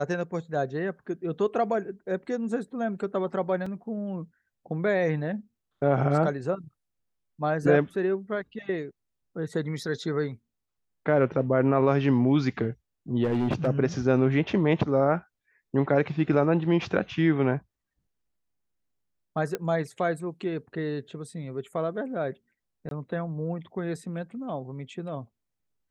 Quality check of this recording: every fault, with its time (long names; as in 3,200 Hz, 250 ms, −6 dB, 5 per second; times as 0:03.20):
0:03.66: drop-out 4.3 ms
0:13.23–0:13.68: clipping −21 dBFS
0:19.55: click −16 dBFS
0:22.89–0:22.91: drop-out 22 ms